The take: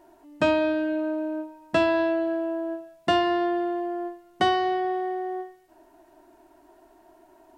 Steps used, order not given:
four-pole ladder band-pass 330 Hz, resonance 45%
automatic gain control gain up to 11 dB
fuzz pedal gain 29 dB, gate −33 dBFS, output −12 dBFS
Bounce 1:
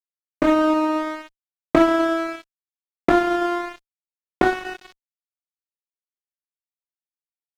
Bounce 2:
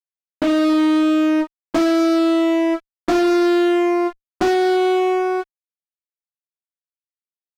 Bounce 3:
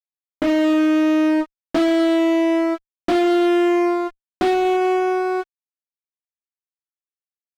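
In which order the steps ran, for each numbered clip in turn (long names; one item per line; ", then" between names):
four-pole ladder band-pass, then fuzz pedal, then automatic gain control
four-pole ladder band-pass, then automatic gain control, then fuzz pedal
automatic gain control, then four-pole ladder band-pass, then fuzz pedal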